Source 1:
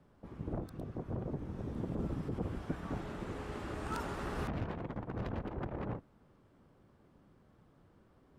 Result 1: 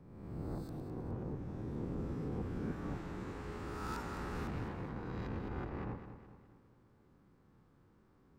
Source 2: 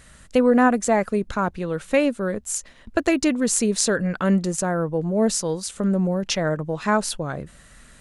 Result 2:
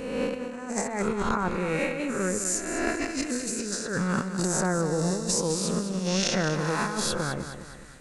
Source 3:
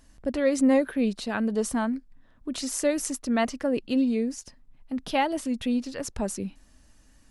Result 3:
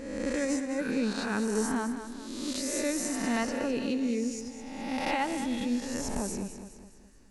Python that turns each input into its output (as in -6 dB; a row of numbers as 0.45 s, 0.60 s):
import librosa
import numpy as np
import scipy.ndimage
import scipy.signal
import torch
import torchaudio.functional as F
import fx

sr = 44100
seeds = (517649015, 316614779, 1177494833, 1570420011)

y = fx.spec_swells(x, sr, rise_s=1.28)
y = fx.graphic_eq_31(y, sr, hz=(630, 3150, 10000), db=(-8, -5, -6))
y = fx.over_compress(y, sr, threshold_db=-22.0, ratio=-0.5)
y = fx.echo_feedback(y, sr, ms=208, feedback_pct=46, wet_db=-10.0)
y = y * librosa.db_to_amplitude(-5.5)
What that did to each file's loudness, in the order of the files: -2.0 LU, -5.5 LU, -4.5 LU